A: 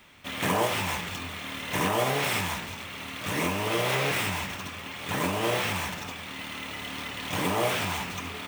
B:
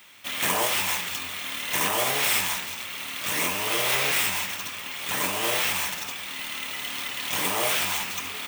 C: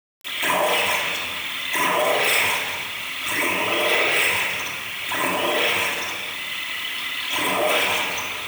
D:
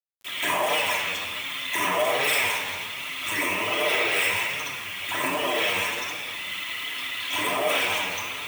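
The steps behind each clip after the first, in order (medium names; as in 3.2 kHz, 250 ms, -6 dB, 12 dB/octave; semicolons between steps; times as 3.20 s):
tilt EQ +3 dB/octave
resonances exaggerated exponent 2; simulated room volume 2500 m³, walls mixed, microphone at 2.9 m; word length cut 6-bit, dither none
flange 1.3 Hz, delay 6.4 ms, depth 4.5 ms, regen +38%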